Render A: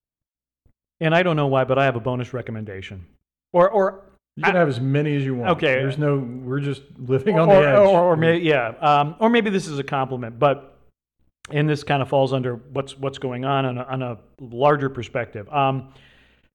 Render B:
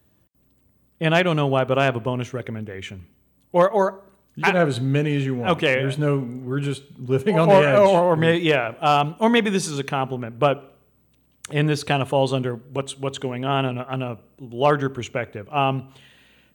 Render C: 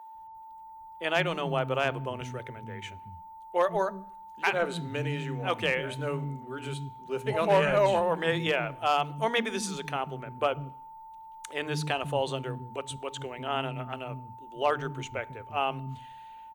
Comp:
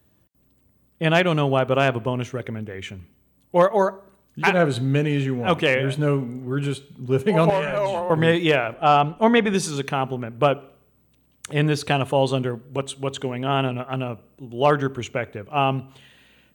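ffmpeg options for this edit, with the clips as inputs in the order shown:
-filter_complex "[1:a]asplit=3[a][b][c];[a]atrim=end=7.502[d];[2:a]atrim=start=7.498:end=8.102[e];[b]atrim=start=8.098:end=8.742[f];[0:a]atrim=start=8.738:end=9.542[g];[c]atrim=start=9.538[h];[d][e]acrossfade=d=0.004:c1=hsin:c2=hsin[i];[i][f]acrossfade=d=0.004:c1=hsin:c2=hsin[j];[j][g]acrossfade=d=0.004:c1=hsin:c2=hsin[k];[k][h]acrossfade=d=0.004:c1=hsin:c2=hsin"

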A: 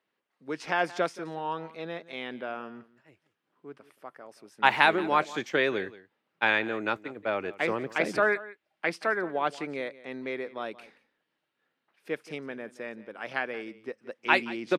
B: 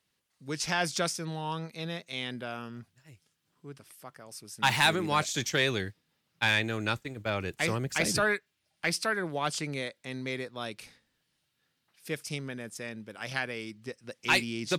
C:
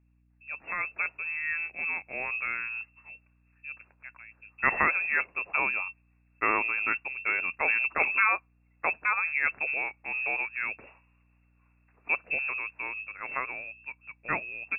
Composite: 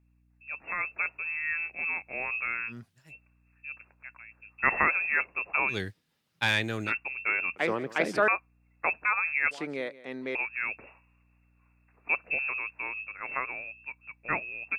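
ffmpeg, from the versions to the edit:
-filter_complex "[1:a]asplit=2[a][b];[0:a]asplit=2[c][d];[2:a]asplit=5[e][f][g][h][i];[e]atrim=end=2.73[j];[a]atrim=start=2.67:end=3.14[k];[f]atrim=start=3.08:end=5.78[l];[b]atrim=start=5.68:end=6.93[m];[g]atrim=start=6.83:end=7.562[n];[c]atrim=start=7.558:end=8.282[o];[h]atrim=start=8.278:end=9.512[p];[d]atrim=start=9.508:end=10.352[q];[i]atrim=start=10.348[r];[j][k]acrossfade=d=0.06:c1=tri:c2=tri[s];[s][l]acrossfade=d=0.06:c1=tri:c2=tri[t];[t][m]acrossfade=d=0.1:c1=tri:c2=tri[u];[u][n]acrossfade=d=0.1:c1=tri:c2=tri[v];[v][o]acrossfade=d=0.004:c1=hsin:c2=hsin[w];[w][p]acrossfade=d=0.004:c1=hsin:c2=hsin[x];[x][q]acrossfade=d=0.004:c1=hsin:c2=hsin[y];[y][r]acrossfade=d=0.004:c1=hsin:c2=hsin"

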